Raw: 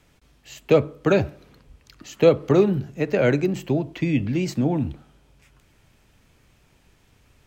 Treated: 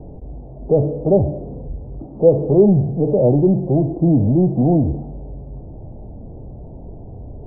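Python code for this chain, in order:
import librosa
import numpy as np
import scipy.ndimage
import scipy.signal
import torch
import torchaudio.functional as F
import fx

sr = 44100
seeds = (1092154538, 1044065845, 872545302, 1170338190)

y = fx.power_curve(x, sr, exponent=0.5)
y = fx.hpss(y, sr, part='harmonic', gain_db=9)
y = scipy.signal.sosfilt(scipy.signal.butter(8, 760.0, 'lowpass', fs=sr, output='sos'), y)
y = y * librosa.db_to_amplitude(-7.0)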